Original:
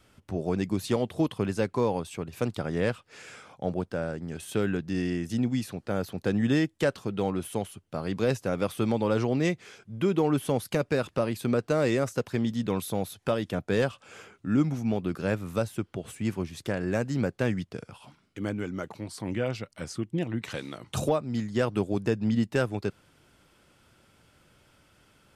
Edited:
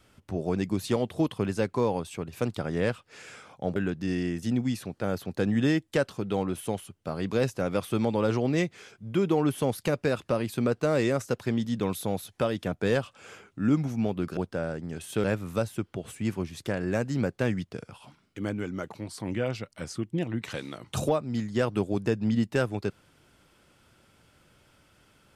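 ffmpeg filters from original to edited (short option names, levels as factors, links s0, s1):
-filter_complex "[0:a]asplit=4[s0][s1][s2][s3];[s0]atrim=end=3.762[s4];[s1]atrim=start=4.628:end=15.242[s5];[s2]atrim=start=3.758:end=4.632[s6];[s3]atrim=start=15.238[s7];[s4][s5]acrossfade=d=0.004:c1=hsin:c2=hsin[s8];[s8][s6]acrossfade=d=0.004:c1=hsin:c2=hsin[s9];[s9][s7]acrossfade=d=0.004:c1=hsin:c2=hsin"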